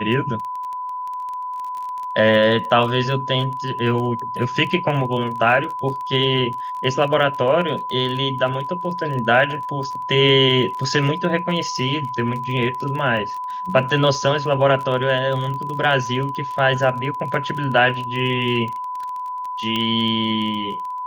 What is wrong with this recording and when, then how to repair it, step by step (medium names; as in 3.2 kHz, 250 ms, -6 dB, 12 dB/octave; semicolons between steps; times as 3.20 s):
crackle 23 per s -27 dBFS
whine 1 kHz -25 dBFS
19.76 s: pop -10 dBFS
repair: de-click; band-stop 1 kHz, Q 30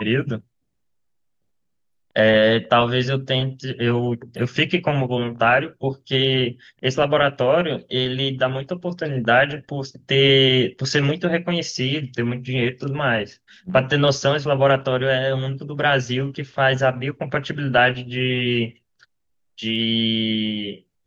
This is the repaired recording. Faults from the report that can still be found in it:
19.76 s: pop